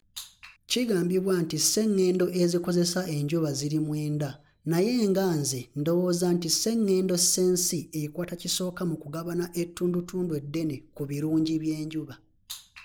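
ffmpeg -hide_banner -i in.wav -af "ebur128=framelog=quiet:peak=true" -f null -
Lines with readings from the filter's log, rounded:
Integrated loudness:
  I:         -26.8 LUFS
  Threshold: -37.1 LUFS
Loudness range:
  LRA:         5.7 LU
  Threshold: -46.8 LUFS
  LRA low:   -30.6 LUFS
  LRA high:  -24.9 LUFS
True peak:
  Peak:      -10.0 dBFS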